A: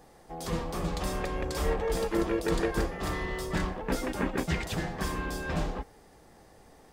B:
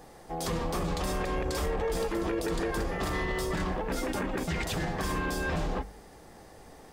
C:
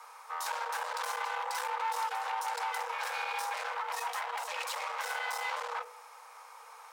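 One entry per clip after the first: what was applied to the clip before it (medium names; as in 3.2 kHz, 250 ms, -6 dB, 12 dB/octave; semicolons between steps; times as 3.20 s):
de-hum 49.79 Hz, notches 5; peak limiter -27.5 dBFS, peak gain reduction 11.5 dB; trim +5 dB
one-sided clip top -40 dBFS, bottom -26 dBFS; resonant low shelf 310 Hz -10 dB, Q 1.5; frequency shift +440 Hz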